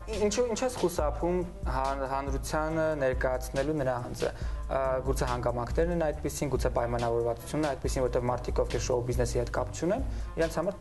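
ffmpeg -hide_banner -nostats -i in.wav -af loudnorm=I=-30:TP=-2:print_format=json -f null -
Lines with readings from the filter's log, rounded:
"input_i" : "-30.5",
"input_tp" : "-13.9",
"input_lra" : "0.6",
"input_thresh" : "-40.5",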